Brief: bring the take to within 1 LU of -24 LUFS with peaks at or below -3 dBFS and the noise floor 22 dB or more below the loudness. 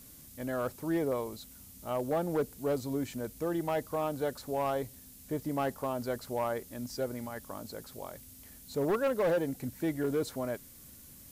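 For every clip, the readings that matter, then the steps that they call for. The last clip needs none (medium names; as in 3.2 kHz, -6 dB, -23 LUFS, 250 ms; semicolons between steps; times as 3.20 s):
clipped samples 1.5%; clipping level -24.5 dBFS; noise floor -53 dBFS; noise floor target -56 dBFS; loudness -34.0 LUFS; peak level -24.5 dBFS; loudness target -24.0 LUFS
-> clip repair -24.5 dBFS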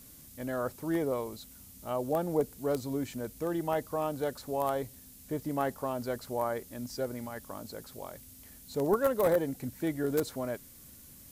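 clipped samples 0.0%; noise floor -53 dBFS; noise floor target -56 dBFS
-> noise reduction 6 dB, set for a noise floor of -53 dBFS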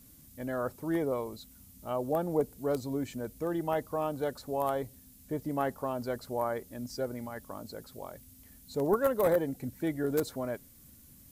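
noise floor -56 dBFS; loudness -33.0 LUFS; peak level -15.5 dBFS; loudness target -24.0 LUFS
-> trim +9 dB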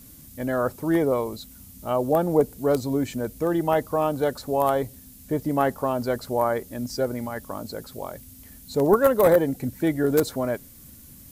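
loudness -24.0 LUFS; peak level -6.5 dBFS; noise floor -47 dBFS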